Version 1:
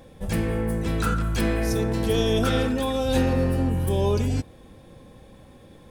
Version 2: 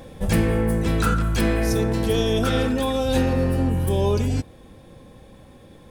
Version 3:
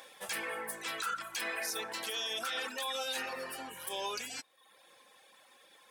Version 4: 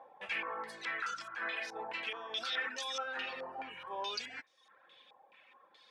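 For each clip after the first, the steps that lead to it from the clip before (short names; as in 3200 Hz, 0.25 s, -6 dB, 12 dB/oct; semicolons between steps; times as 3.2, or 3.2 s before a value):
vocal rider 0.5 s; gain +2.5 dB
reverb removal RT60 0.78 s; HPF 1200 Hz 12 dB/oct; limiter -27 dBFS, peak gain reduction 11 dB
stepped low-pass 4.7 Hz 850–5700 Hz; gain -5 dB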